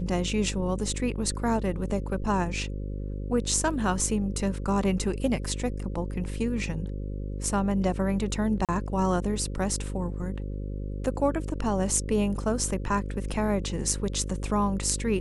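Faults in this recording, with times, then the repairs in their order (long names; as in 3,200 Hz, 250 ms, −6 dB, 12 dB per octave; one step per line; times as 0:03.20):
mains buzz 50 Hz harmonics 11 −33 dBFS
0:08.65–0:08.69: drop-out 37 ms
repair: hum removal 50 Hz, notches 11
repair the gap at 0:08.65, 37 ms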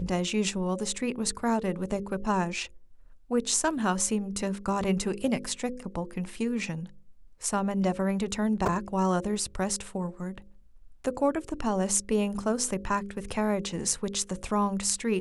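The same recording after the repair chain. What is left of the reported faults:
none of them is left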